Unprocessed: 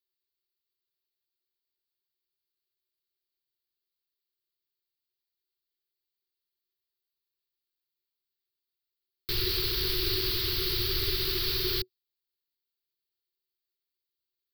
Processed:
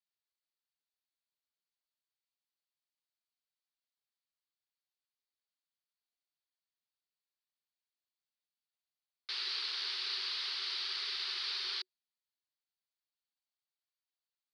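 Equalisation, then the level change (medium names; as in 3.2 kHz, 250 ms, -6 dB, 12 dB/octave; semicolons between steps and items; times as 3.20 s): steep high-pass 600 Hz 36 dB/octave; brick-wall FIR low-pass 9.9 kHz; distance through air 69 m; -3.5 dB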